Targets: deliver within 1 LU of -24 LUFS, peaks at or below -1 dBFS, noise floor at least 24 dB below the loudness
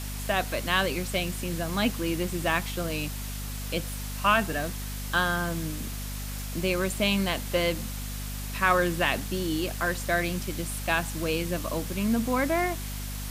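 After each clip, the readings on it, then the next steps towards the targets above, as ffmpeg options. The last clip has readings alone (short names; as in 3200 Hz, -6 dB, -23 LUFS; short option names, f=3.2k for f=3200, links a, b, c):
hum 50 Hz; harmonics up to 250 Hz; hum level -33 dBFS; noise floor -35 dBFS; noise floor target -52 dBFS; loudness -28.0 LUFS; peak -8.5 dBFS; loudness target -24.0 LUFS
-> -af "bandreject=f=50:t=h:w=6,bandreject=f=100:t=h:w=6,bandreject=f=150:t=h:w=6,bandreject=f=200:t=h:w=6,bandreject=f=250:t=h:w=6"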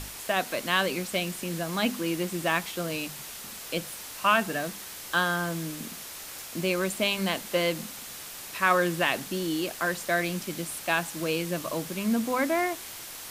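hum none; noise floor -41 dBFS; noise floor target -53 dBFS
-> -af "afftdn=nr=12:nf=-41"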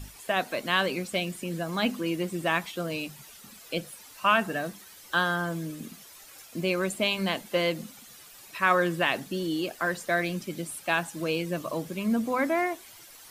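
noise floor -50 dBFS; noise floor target -53 dBFS
-> -af "afftdn=nr=6:nf=-50"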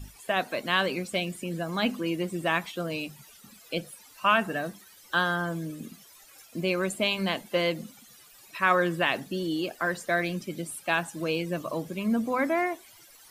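noise floor -54 dBFS; loudness -28.5 LUFS; peak -9.5 dBFS; loudness target -24.0 LUFS
-> -af "volume=4.5dB"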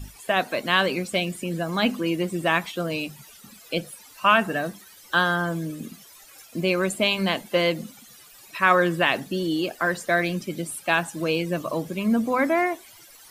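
loudness -24.0 LUFS; peak -5.0 dBFS; noise floor -49 dBFS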